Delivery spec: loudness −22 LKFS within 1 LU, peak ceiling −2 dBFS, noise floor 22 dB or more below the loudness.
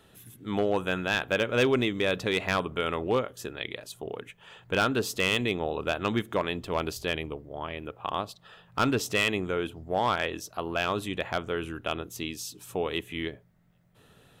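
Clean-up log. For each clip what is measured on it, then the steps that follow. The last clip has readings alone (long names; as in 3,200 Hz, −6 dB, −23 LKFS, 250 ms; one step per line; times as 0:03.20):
share of clipped samples 0.3%; peaks flattened at −17.0 dBFS; integrated loudness −29.5 LKFS; sample peak −17.0 dBFS; target loudness −22.0 LKFS
→ clipped peaks rebuilt −17 dBFS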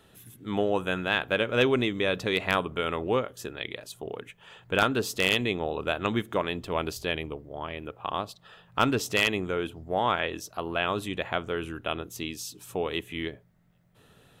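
share of clipped samples 0.0%; integrated loudness −29.0 LKFS; sample peak −8.0 dBFS; target loudness −22.0 LKFS
→ level +7 dB
brickwall limiter −2 dBFS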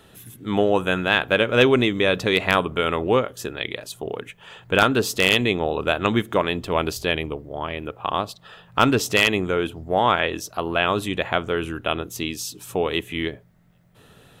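integrated loudness −22.0 LKFS; sample peak −2.0 dBFS; background noise floor −53 dBFS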